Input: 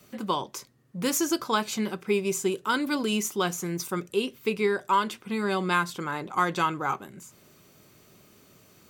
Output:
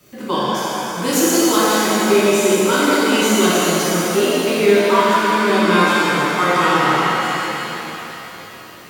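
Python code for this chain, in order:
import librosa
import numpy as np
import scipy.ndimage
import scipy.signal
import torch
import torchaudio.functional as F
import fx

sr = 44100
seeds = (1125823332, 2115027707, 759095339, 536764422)

y = fx.rev_shimmer(x, sr, seeds[0], rt60_s=3.6, semitones=7, shimmer_db=-8, drr_db=-10.0)
y = F.gain(torch.from_numpy(y), 1.5).numpy()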